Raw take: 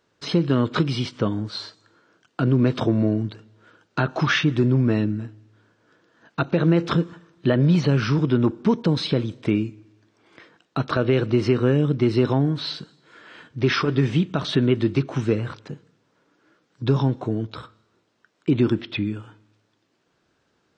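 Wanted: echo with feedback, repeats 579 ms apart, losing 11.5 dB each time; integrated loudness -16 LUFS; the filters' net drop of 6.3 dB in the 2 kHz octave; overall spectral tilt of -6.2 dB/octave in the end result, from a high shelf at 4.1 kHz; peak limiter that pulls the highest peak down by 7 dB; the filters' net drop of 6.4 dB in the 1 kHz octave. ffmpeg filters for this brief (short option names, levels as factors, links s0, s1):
-af "equalizer=f=1000:t=o:g=-6.5,equalizer=f=2000:t=o:g=-8,highshelf=f=4100:g=7.5,alimiter=limit=0.168:level=0:latency=1,aecho=1:1:579|1158|1737:0.266|0.0718|0.0194,volume=3.35"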